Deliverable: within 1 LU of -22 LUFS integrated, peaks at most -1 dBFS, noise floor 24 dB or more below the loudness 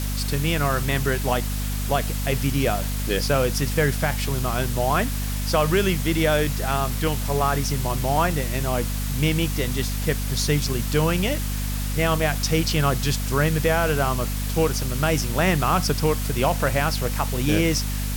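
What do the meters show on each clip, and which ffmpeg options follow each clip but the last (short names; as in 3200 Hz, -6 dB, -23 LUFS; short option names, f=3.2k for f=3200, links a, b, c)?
hum 50 Hz; harmonics up to 250 Hz; hum level -24 dBFS; noise floor -26 dBFS; noise floor target -47 dBFS; loudness -23.0 LUFS; peak -8.0 dBFS; loudness target -22.0 LUFS
-> -af "bandreject=f=50:t=h:w=6,bandreject=f=100:t=h:w=6,bandreject=f=150:t=h:w=6,bandreject=f=200:t=h:w=6,bandreject=f=250:t=h:w=6"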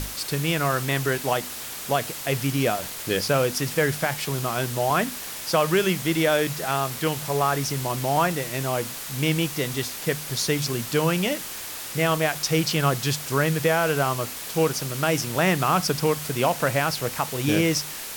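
hum none; noise floor -35 dBFS; noise floor target -48 dBFS
-> -af "afftdn=nr=13:nf=-35"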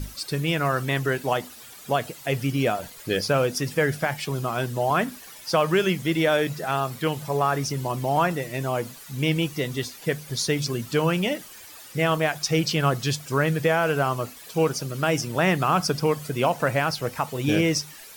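noise floor -44 dBFS; noise floor target -49 dBFS
-> -af "afftdn=nr=6:nf=-44"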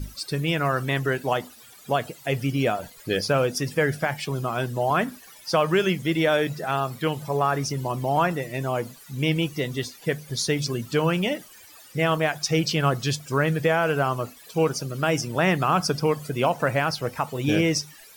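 noise floor -49 dBFS; loudness -25.0 LUFS; peak -9.5 dBFS; loudness target -22.0 LUFS
-> -af "volume=3dB"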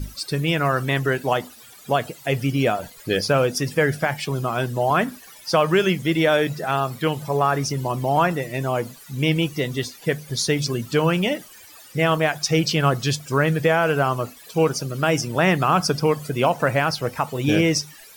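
loudness -22.0 LUFS; peak -6.5 dBFS; noise floor -46 dBFS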